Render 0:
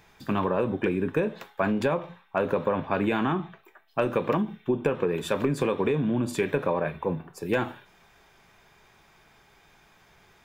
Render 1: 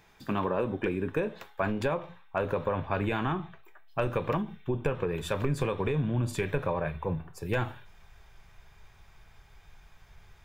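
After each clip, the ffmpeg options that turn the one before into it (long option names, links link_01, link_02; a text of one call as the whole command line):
ffmpeg -i in.wav -af "asubboost=boost=10:cutoff=79,volume=-3dB" out.wav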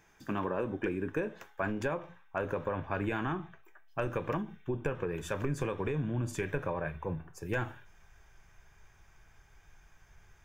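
ffmpeg -i in.wav -af "equalizer=frequency=315:width_type=o:width=0.33:gain=5,equalizer=frequency=1600:width_type=o:width=0.33:gain=5,equalizer=frequency=4000:width_type=o:width=0.33:gain=-8,equalizer=frequency=6300:width_type=o:width=0.33:gain=8,volume=-5dB" out.wav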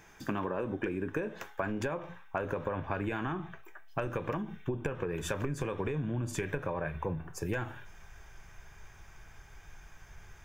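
ffmpeg -i in.wav -af "acompressor=threshold=-38dB:ratio=6,volume=7.5dB" out.wav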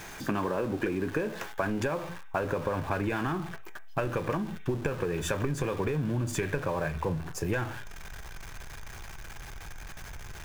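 ffmpeg -i in.wav -af "aeval=exprs='val(0)+0.5*0.00708*sgn(val(0))':channel_layout=same,volume=3dB" out.wav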